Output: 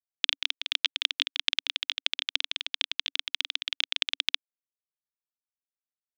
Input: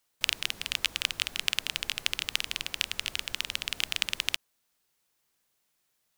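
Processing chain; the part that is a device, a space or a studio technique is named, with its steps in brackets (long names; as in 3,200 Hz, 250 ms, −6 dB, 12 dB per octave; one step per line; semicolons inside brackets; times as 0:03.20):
blown loudspeaker (dead-zone distortion −31.5 dBFS; loudspeaker in its box 160–5,600 Hz, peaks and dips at 280 Hz +7 dB, 480 Hz −5 dB, 3,500 Hz +9 dB)
level −1 dB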